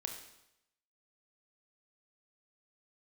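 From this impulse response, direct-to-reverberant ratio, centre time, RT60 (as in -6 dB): 3.5 dB, 26 ms, 0.85 s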